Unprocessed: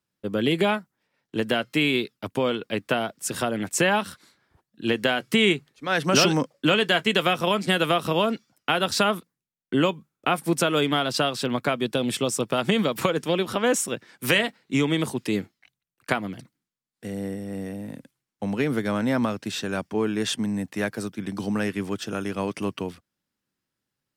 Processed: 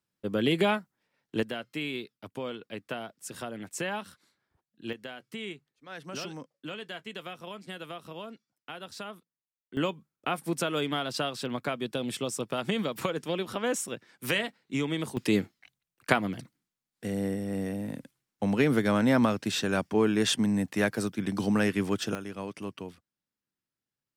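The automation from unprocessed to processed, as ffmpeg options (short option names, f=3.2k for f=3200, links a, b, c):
-af "asetnsamples=n=441:p=0,asendcmd='1.43 volume volume -12dB;4.93 volume volume -19dB;9.77 volume volume -7.5dB;15.17 volume volume 0.5dB;22.15 volume volume -9.5dB',volume=-3dB"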